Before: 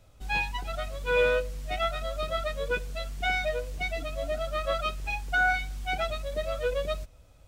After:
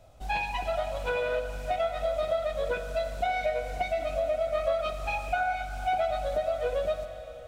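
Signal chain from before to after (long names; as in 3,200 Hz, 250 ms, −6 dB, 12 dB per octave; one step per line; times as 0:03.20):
parametric band 690 Hz +14.5 dB 0.48 octaves
downward compressor, threshold −26 dBFS, peak gain reduction 12.5 dB
four-comb reverb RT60 3.8 s, combs from 31 ms, DRR 7 dB
highs frequency-modulated by the lows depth 0.12 ms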